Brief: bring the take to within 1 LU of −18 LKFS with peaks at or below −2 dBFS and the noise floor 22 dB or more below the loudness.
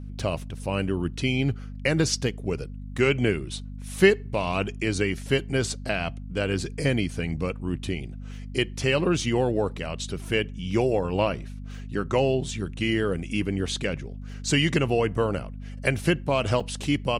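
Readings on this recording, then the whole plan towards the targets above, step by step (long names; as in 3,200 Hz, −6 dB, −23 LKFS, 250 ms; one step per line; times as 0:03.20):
number of dropouts 3; longest dropout 4.6 ms; mains hum 50 Hz; hum harmonics up to 250 Hz; level of the hum −34 dBFS; integrated loudness −26.5 LKFS; sample peak −5.5 dBFS; target loudness −18.0 LKFS
→ repair the gap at 0:00.19/0:02.98/0:16.60, 4.6 ms
hum removal 50 Hz, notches 5
level +8.5 dB
brickwall limiter −2 dBFS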